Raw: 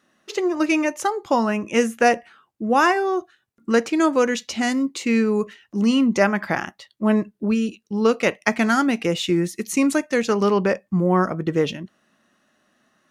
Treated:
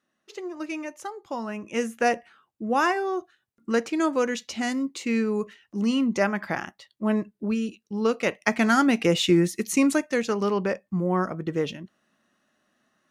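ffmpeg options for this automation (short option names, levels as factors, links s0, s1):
-af "volume=1.19,afade=t=in:st=1.35:d=0.77:silence=0.421697,afade=t=in:st=8.22:d=1.02:silence=0.446684,afade=t=out:st=9.24:d=1.12:silence=0.421697"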